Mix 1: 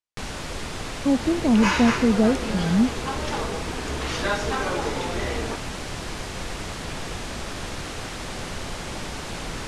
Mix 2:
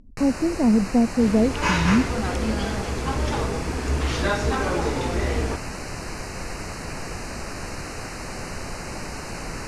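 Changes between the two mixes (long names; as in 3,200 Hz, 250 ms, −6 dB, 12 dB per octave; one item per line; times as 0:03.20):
speech: entry −0.85 s
first sound: add Butterworth band-reject 3,400 Hz, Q 2.6
second sound: add low-shelf EQ 240 Hz +10.5 dB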